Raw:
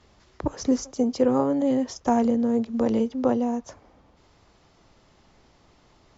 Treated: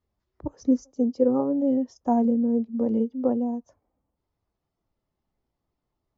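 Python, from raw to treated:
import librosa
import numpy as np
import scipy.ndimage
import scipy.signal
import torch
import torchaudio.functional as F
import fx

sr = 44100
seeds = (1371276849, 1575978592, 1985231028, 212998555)

y = fx.spectral_expand(x, sr, expansion=1.5)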